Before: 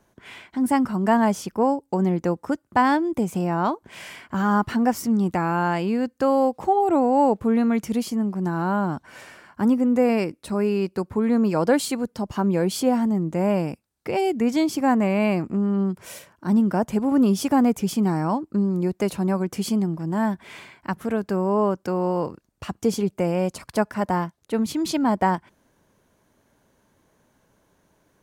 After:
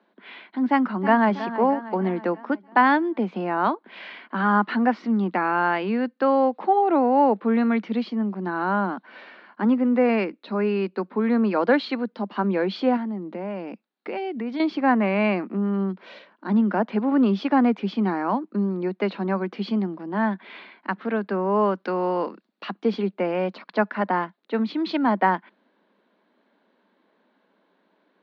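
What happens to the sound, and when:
0.69–1.33 s: echo throw 320 ms, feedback 55%, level -12 dB
12.96–14.60 s: compression 5:1, threshold -25 dBFS
21.54–22.71 s: treble shelf 4.3 kHz +12 dB
whole clip: elliptic low-pass 4.1 kHz, stop band 60 dB; dynamic bell 1.7 kHz, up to +5 dB, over -40 dBFS, Q 1; steep high-pass 190 Hz 72 dB/octave

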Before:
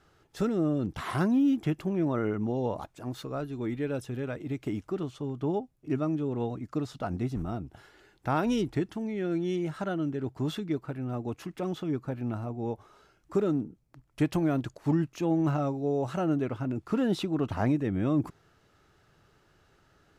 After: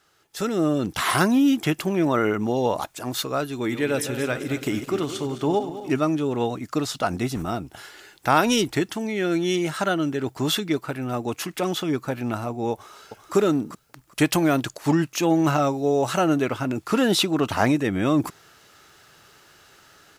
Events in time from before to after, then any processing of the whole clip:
3.60–5.90 s: backward echo that repeats 105 ms, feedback 68%, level -10.5 dB
12.72–13.35 s: echo throw 390 ms, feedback 20%, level -7 dB
whole clip: tilt EQ +3 dB/octave; level rider gain up to 11.5 dB

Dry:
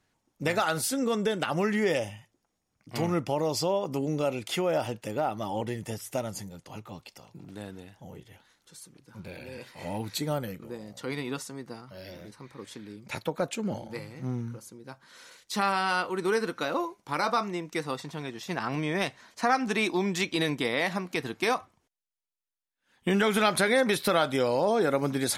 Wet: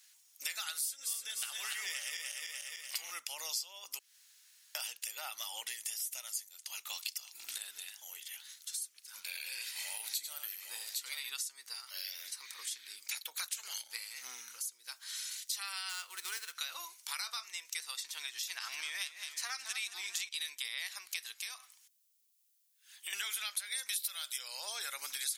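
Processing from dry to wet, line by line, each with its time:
0.84–3.11 s: backward echo that repeats 148 ms, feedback 60%, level -3 dB
3.99–4.75 s: room tone
6.90–7.58 s: gain +8.5 dB
9.33–11.30 s: multi-tap echo 86/809 ms -8.5/-10 dB
13.36–13.81 s: spectral peaks clipped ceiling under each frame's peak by 22 dB
15.89–16.55 s: median filter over 9 samples
17.11–17.71 s: peaking EQ 250 Hz -13 dB
18.26–20.29 s: modulated delay 217 ms, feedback 56%, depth 108 cents, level -10.5 dB
21.36–23.13 s: compression 3:1, threshold -38 dBFS
23.72–24.38 s: treble shelf 3.7 kHz +9.5 dB
whole clip: Bessel high-pass 2.8 kHz, order 2; tilt EQ +4 dB/octave; compression 5:1, threshold -46 dBFS; trim +7.5 dB

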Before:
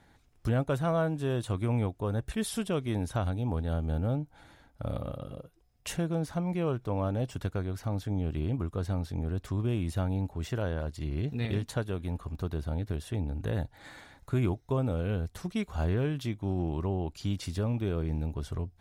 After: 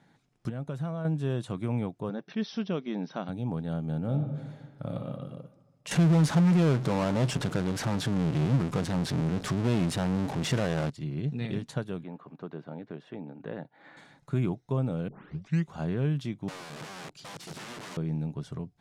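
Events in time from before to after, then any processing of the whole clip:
0.49–1.05 s: compression 5:1, threshold -32 dBFS
2.09–3.29 s: brick-wall FIR band-pass 160–6100 Hz
4.00–5.07 s: reverb throw, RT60 1.5 s, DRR 4.5 dB
5.91–10.90 s: power-law waveshaper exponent 0.35
12.03–13.97 s: band-pass 270–2400 Hz
15.08 s: tape start 0.64 s
16.48–17.97 s: integer overflow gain 35 dB
whole clip: low-pass 8.7 kHz 12 dB/octave; resonant low shelf 100 Hz -13.5 dB, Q 3; trim -2.5 dB

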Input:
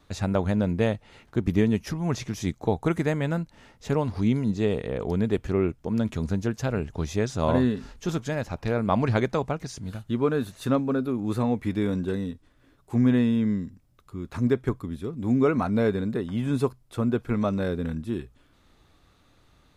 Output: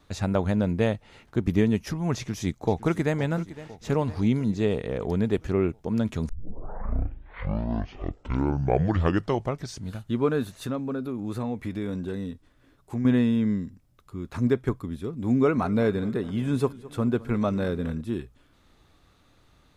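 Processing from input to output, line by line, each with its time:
2.16–3.16 s: echo throw 510 ms, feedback 60%, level -16 dB
6.29 s: tape start 3.61 s
10.57–13.05 s: compression 2:1, threshold -30 dBFS
15.36–18.01 s: modulated delay 209 ms, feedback 56%, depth 90 cents, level -19 dB

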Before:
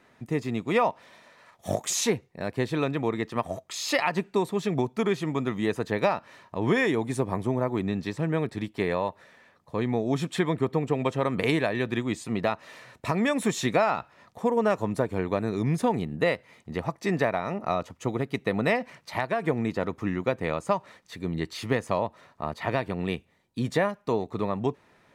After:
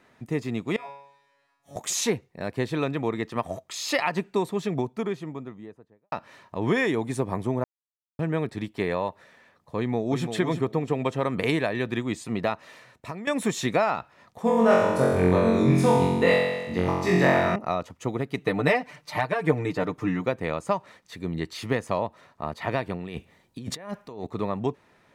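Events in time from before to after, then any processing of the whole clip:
0.76–1.76 s: feedback comb 140 Hz, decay 0.8 s, mix 100%
4.41–6.12 s: studio fade out
7.64–8.19 s: mute
9.77–10.31 s: echo throw 340 ms, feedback 25%, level -7.5 dB
12.60–13.27 s: fade out, to -15.5 dB
14.42–17.56 s: flutter echo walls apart 3.8 m, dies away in 1.2 s
18.37–20.26 s: comb 6.7 ms, depth 86%
22.94–24.27 s: compressor with a negative ratio -36 dBFS

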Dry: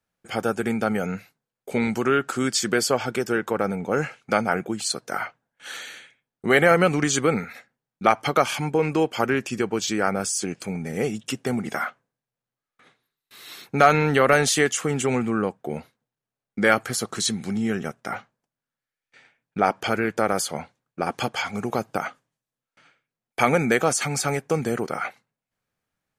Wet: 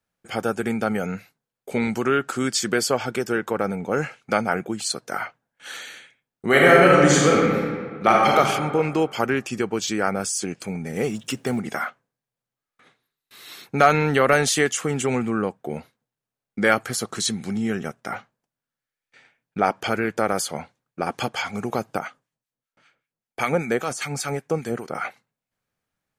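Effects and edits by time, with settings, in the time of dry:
6.48–8.37 s: reverb throw, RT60 1.8 s, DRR -3.5 dB
10.96–11.60 s: companding laws mixed up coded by mu
21.99–24.95 s: harmonic tremolo 5.1 Hz, crossover 1.2 kHz

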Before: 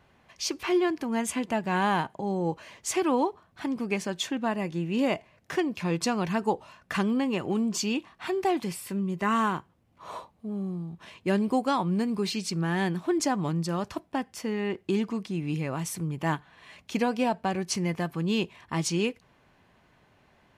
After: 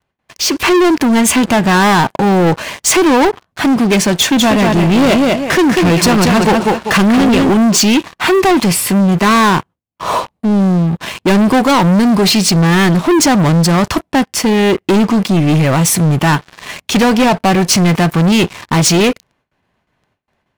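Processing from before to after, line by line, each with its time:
4.16–7.50 s: feedback delay 194 ms, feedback 22%, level -6 dB
whole clip: gate with hold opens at -52 dBFS; waveshaping leveller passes 5; level rider gain up to 7 dB

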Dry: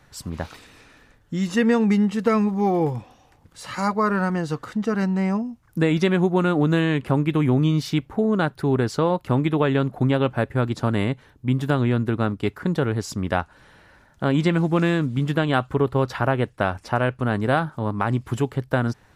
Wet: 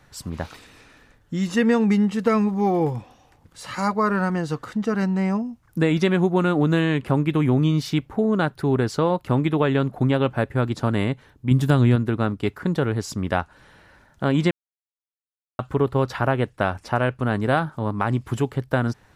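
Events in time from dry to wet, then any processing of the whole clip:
11.51–11.96 s: tone controls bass +6 dB, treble +7 dB
14.51–15.59 s: mute

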